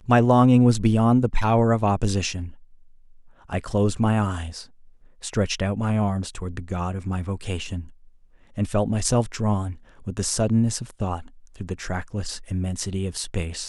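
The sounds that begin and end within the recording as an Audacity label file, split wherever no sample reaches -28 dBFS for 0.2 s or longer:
3.520000	4.610000	sound
5.240000	7.800000	sound
8.580000	9.710000	sound
10.070000	11.190000	sound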